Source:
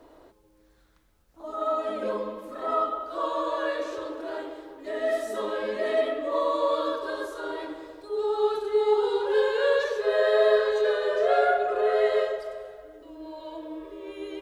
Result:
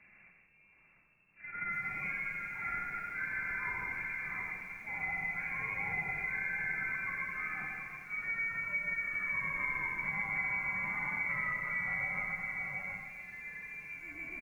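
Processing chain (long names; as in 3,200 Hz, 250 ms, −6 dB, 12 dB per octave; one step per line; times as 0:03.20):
variable-slope delta modulation 32 kbit/s
voice inversion scrambler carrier 2,700 Hz
parametric band 190 Hz +10 dB 0.64 octaves
convolution reverb RT60 0.90 s, pre-delay 45 ms, DRR 14 dB
frequency shifter −15 Hz
spectral tilt −2 dB per octave
multi-tap delay 68/87/122/155/235/724 ms −15.5/−8.5/−10.5/−6.5/−19/−8 dB
downward compressor 4 to 1, threshold −27 dBFS, peak gain reduction 9.5 dB
hum removal 235.3 Hz, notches 8
feedback echo at a low word length 292 ms, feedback 35%, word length 8 bits, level −14 dB
level −6.5 dB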